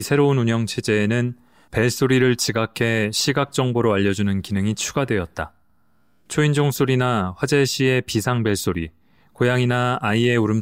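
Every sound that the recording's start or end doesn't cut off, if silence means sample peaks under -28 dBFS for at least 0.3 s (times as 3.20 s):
1.74–5.46 s
6.30–8.86 s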